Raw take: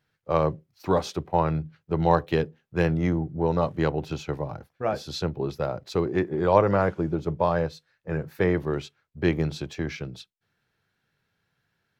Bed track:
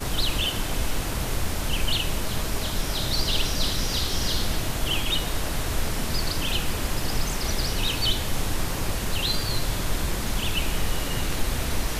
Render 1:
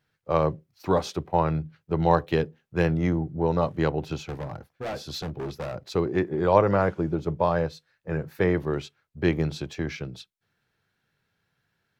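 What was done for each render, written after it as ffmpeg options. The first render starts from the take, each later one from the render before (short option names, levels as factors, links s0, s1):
-filter_complex "[0:a]asplit=3[s0][s1][s2];[s0]afade=t=out:st=4.16:d=0.02[s3];[s1]volume=28.2,asoftclip=hard,volume=0.0355,afade=t=in:st=4.16:d=0.02,afade=t=out:st=5.74:d=0.02[s4];[s2]afade=t=in:st=5.74:d=0.02[s5];[s3][s4][s5]amix=inputs=3:normalize=0"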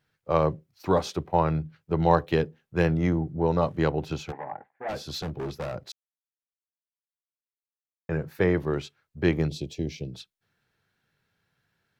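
-filter_complex "[0:a]asplit=3[s0][s1][s2];[s0]afade=t=out:st=4.31:d=0.02[s3];[s1]highpass=340,equalizer=f=340:t=q:w=4:g=-4,equalizer=f=510:t=q:w=4:g=-5,equalizer=f=820:t=q:w=4:g=10,equalizer=f=1300:t=q:w=4:g=-7,equalizer=f=1900:t=q:w=4:g=7,lowpass=f=2000:w=0.5412,lowpass=f=2000:w=1.3066,afade=t=in:st=4.31:d=0.02,afade=t=out:st=4.88:d=0.02[s4];[s2]afade=t=in:st=4.88:d=0.02[s5];[s3][s4][s5]amix=inputs=3:normalize=0,asplit=3[s6][s7][s8];[s6]afade=t=out:st=9.47:d=0.02[s9];[s7]asuperstop=centerf=1300:order=4:qfactor=0.54,afade=t=in:st=9.47:d=0.02,afade=t=out:st=10.12:d=0.02[s10];[s8]afade=t=in:st=10.12:d=0.02[s11];[s9][s10][s11]amix=inputs=3:normalize=0,asplit=3[s12][s13][s14];[s12]atrim=end=5.92,asetpts=PTS-STARTPTS,afade=t=out:st=5.916:d=0.004:c=hsin[s15];[s13]atrim=start=5.92:end=8.09,asetpts=PTS-STARTPTS,volume=0[s16];[s14]atrim=start=8.09,asetpts=PTS-STARTPTS,afade=t=in:d=0.004:c=hsin[s17];[s15][s16][s17]concat=n=3:v=0:a=1"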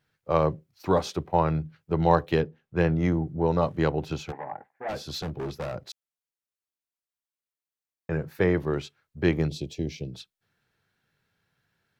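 -filter_complex "[0:a]asettb=1/sr,asplit=3[s0][s1][s2];[s0]atrim=end=2.404[s3];[s1]atrim=start=2.4:end=2.98,asetpts=PTS-STARTPTS,afade=t=in:d=0.004:c=qsin,afade=t=out:st=0.576:d=0.004:c=qsin,highshelf=f=5300:g=-11.5[s4];[s2]atrim=start=2.976[s5];[s3][s4]acrossfade=d=0.004:c1=hsin:c2=qsin[s6];[s6][s5]acrossfade=d=0.004:c1=qsin:c2=hsin"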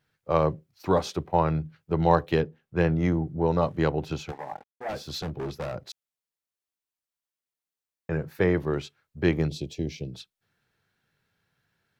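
-filter_complex "[0:a]asettb=1/sr,asplit=3[s0][s1][s2];[s0]atrim=end=4.294[s3];[s1]atrim=start=4.29:end=5.11,asetpts=PTS-STARTPTS,afade=t=in:d=0.004:c=qsin,afade=t=out:st=0.816:d=0.004:c=qsin,aeval=exprs='sgn(val(0))*max(abs(val(0))-0.00168,0)':c=same[s4];[s2]atrim=start=5.106[s5];[s3][s4]acrossfade=d=0.004:c1=hsin:c2=qsin[s6];[s6][s5]acrossfade=d=0.004:c1=qsin:c2=hsin"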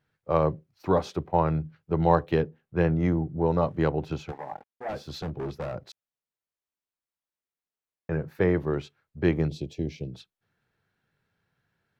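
-af "highshelf=f=3000:g=-9"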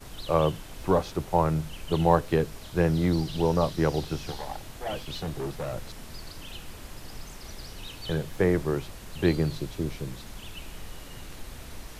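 -filter_complex "[1:a]volume=0.168[s0];[0:a][s0]amix=inputs=2:normalize=0"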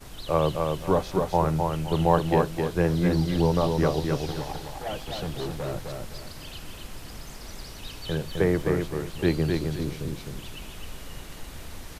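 -af "aecho=1:1:259|518|777|1036:0.631|0.183|0.0531|0.0154"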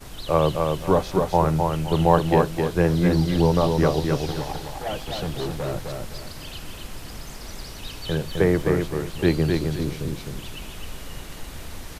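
-af "volume=1.5"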